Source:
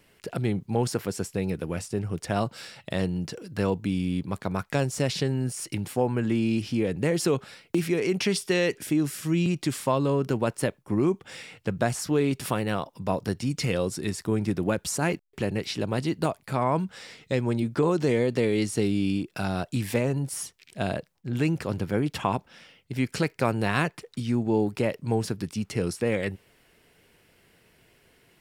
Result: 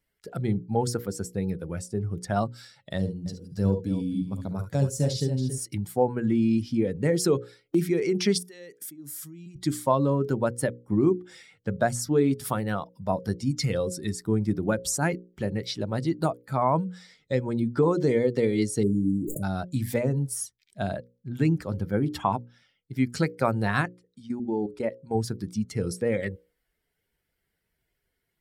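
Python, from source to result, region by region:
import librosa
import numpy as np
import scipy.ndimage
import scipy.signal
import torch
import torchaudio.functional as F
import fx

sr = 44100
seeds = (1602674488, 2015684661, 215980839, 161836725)

y = fx.chain(x, sr, fx.peak_eq(hz=1500.0, db=-8.0, octaves=2.2),
    fx.echo_multitap(ms=(51, 70, 72, 278), db=(-11.5, -10.5, -12.5, -7.0)), at=(2.98, 5.58))
y = fx.chain(y, sr, fx.highpass(hz=120.0, slope=12),
    fx.high_shelf(hz=8800.0, db=8.0),
    fx.level_steps(step_db=19), at=(8.38, 9.56))
y = fx.chain(y, sr, fx.brickwall_bandstop(low_hz=630.0, high_hz=6500.0),
    fx.sustainer(db_per_s=20.0), at=(18.83, 19.43))
y = fx.chain(y, sr, fx.lowpass(hz=12000.0, slope=24),
    fx.peak_eq(hz=120.0, db=-7.5, octaves=0.52),
    fx.level_steps(step_db=13), at=(23.81, 25.15))
y = fx.bin_expand(y, sr, power=1.5)
y = fx.peak_eq(y, sr, hz=2700.0, db=-11.0, octaves=0.46)
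y = fx.hum_notches(y, sr, base_hz=60, count=9)
y = y * librosa.db_to_amplitude(4.5)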